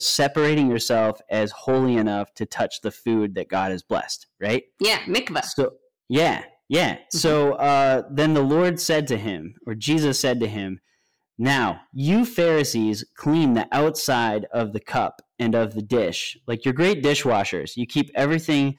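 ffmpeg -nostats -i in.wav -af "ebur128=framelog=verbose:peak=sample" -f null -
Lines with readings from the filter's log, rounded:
Integrated loudness:
  I:         -22.1 LUFS
  Threshold: -32.3 LUFS
Loudness range:
  LRA:         3.5 LU
  Threshold: -42.4 LUFS
  LRA low:   -24.2 LUFS
  LRA high:  -20.7 LUFS
Sample peak:
  Peak:      -14.0 dBFS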